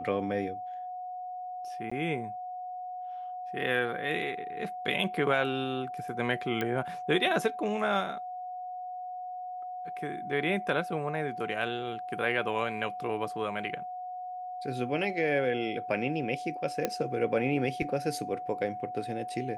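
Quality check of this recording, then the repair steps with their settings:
whine 730 Hz -36 dBFS
1.90–1.92 s: dropout 15 ms
6.61 s: pop -17 dBFS
16.85 s: pop -13 dBFS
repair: de-click; band-stop 730 Hz, Q 30; interpolate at 1.90 s, 15 ms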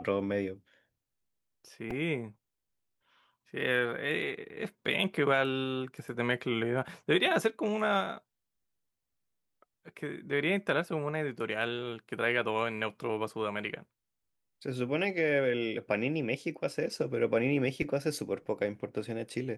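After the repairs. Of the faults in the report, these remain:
nothing left

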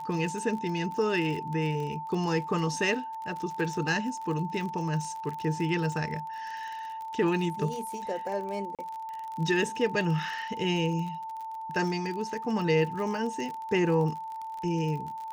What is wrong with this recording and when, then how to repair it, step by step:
crackle 43 per s -35 dBFS
whine 890 Hz -35 dBFS
8.75–8.79 s: dropout 37 ms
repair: de-click; band-stop 890 Hz, Q 30; interpolate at 8.75 s, 37 ms

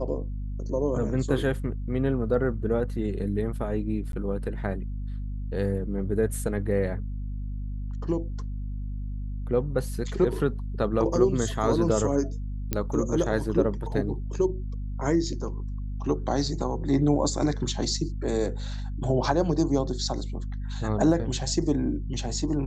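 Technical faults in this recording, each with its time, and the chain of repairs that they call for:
hum 50 Hz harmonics 5 -32 dBFS
4.12–4.13 s: dropout 12 ms
12.73 s: pop -11 dBFS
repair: de-click; de-hum 50 Hz, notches 5; interpolate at 4.12 s, 12 ms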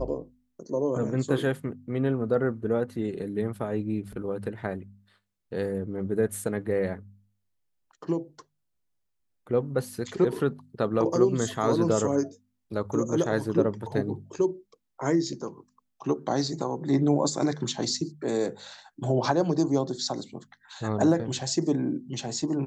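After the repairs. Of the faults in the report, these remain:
nothing left

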